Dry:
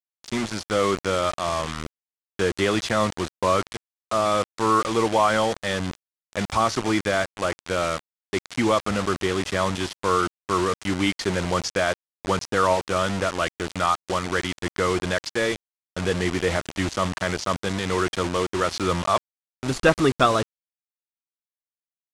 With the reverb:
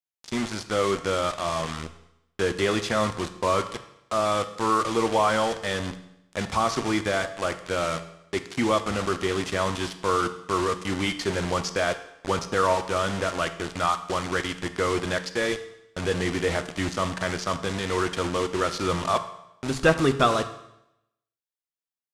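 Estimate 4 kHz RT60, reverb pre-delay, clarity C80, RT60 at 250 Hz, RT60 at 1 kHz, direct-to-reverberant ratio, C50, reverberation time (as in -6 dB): 0.80 s, 7 ms, 14.5 dB, 0.85 s, 0.85 s, 9.0 dB, 12.5 dB, 0.80 s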